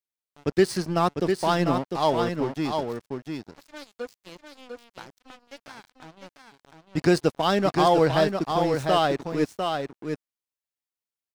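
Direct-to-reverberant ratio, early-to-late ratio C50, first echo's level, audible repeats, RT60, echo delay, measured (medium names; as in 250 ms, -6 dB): no reverb, no reverb, -5.5 dB, 1, no reverb, 700 ms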